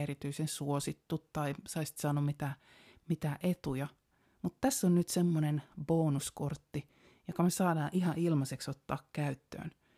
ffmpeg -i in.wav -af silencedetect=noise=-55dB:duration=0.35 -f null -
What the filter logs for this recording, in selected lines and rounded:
silence_start: 3.92
silence_end: 4.43 | silence_duration: 0.51